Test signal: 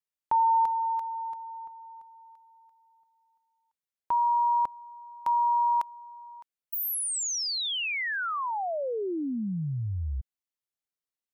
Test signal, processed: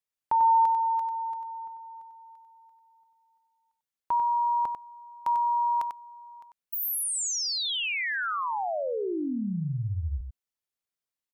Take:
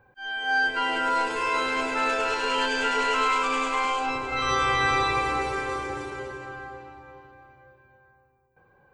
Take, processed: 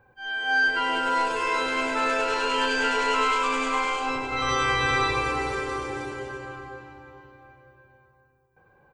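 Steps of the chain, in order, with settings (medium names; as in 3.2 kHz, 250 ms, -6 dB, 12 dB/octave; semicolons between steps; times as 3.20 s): delay 95 ms -7 dB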